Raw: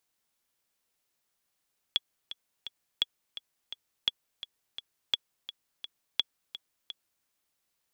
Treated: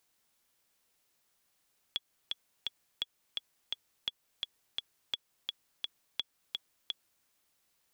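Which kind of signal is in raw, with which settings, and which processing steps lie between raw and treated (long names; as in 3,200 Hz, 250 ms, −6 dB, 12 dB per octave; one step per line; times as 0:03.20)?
click track 170 BPM, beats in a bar 3, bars 5, 3,370 Hz, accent 14 dB −11.5 dBFS
in parallel at −3 dB: downward compressor, threshold −35 dBFS
on the sum: brickwall limiter −18 dBFS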